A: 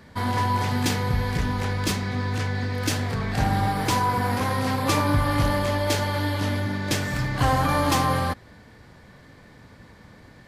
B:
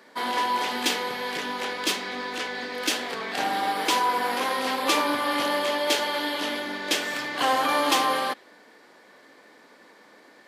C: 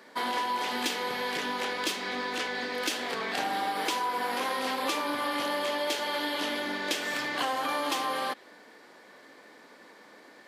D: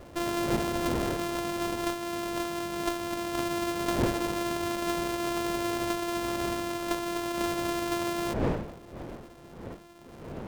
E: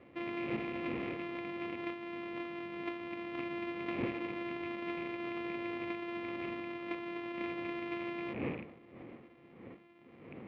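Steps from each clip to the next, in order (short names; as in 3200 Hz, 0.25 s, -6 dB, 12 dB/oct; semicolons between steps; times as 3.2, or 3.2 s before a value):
dynamic EQ 3100 Hz, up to +7 dB, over -47 dBFS, Q 1.8; HPF 300 Hz 24 dB/oct
compressor, threshold -27 dBFS, peak gain reduction 9.5 dB
sample sorter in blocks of 128 samples; wind noise 510 Hz -38 dBFS; running maximum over 17 samples
rattling part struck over -34 dBFS, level -31 dBFS; speaker cabinet 160–2700 Hz, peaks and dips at 170 Hz -4 dB, 410 Hz -4 dB, 630 Hz -9 dB, 910 Hz -8 dB, 1500 Hz -10 dB, 2200 Hz +6 dB; gain -5.5 dB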